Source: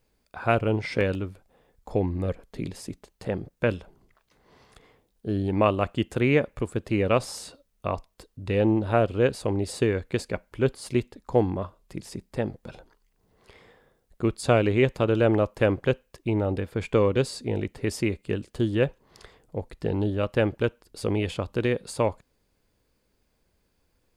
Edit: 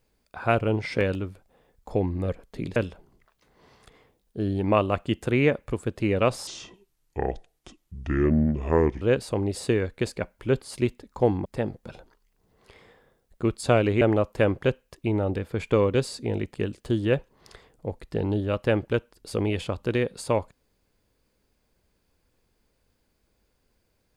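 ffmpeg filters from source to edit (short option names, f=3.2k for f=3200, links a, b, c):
-filter_complex "[0:a]asplit=7[a][b][c][d][e][f][g];[a]atrim=end=2.762[h];[b]atrim=start=3.648:end=7.364[i];[c]atrim=start=7.36:end=9.14,asetpts=PTS-STARTPTS,asetrate=30870,aresample=44100[j];[d]atrim=start=9.136:end=11.582[k];[e]atrim=start=12.248:end=14.812[l];[f]atrim=start=15.228:end=17.762[m];[g]atrim=start=18.238[n];[h][i]acrossfade=d=0.004:c1=hsin:c2=hsin[o];[o][j]acrossfade=d=0.004:c1=hsin:c2=hsin[p];[p][k]acrossfade=d=0.004:c1=hsin:c2=hsin[q];[q][l]acrossfade=d=0.004:c1=hsin:c2=hsin[r];[r][m]acrossfade=d=0.004:c1=hsin:c2=hsin[s];[s][n]acrossfade=d=0.004:c1=hsin:c2=hsin"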